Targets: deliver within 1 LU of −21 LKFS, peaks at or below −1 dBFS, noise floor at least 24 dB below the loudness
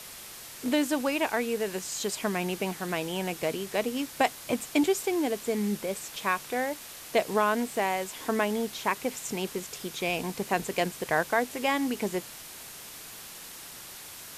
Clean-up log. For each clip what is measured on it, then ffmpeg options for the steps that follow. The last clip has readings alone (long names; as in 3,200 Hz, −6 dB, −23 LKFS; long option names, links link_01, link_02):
background noise floor −45 dBFS; target noise floor −54 dBFS; integrated loudness −29.5 LKFS; sample peak −11.5 dBFS; target loudness −21.0 LKFS
→ -af "afftdn=noise_reduction=9:noise_floor=-45"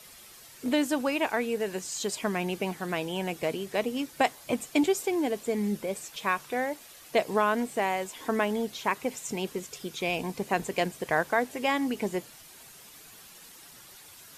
background noise floor −51 dBFS; target noise floor −54 dBFS
→ -af "afftdn=noise_reduction=6:noise_floor=-51"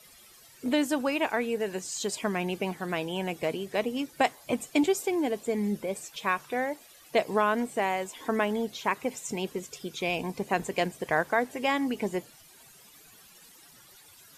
background noise floor −55 dBFS; integrated loudness −30.0 LKFS; sample peak −11.5 dBFS; target loudness −21.0 LKFS
→ -af "volume=9dB"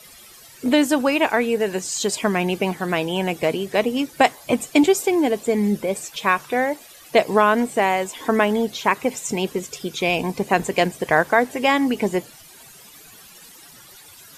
integrated loudness −21.0 LKFS; sample peak −2.5 dBFS; background noise floor −46 dBFS